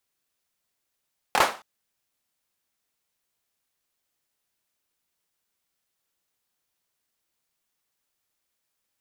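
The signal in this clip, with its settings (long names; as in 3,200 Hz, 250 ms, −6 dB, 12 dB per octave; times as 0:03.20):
synth clap length 0.27 s, bursts 3, apart 26 ms, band 860 Hz, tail 0.34 s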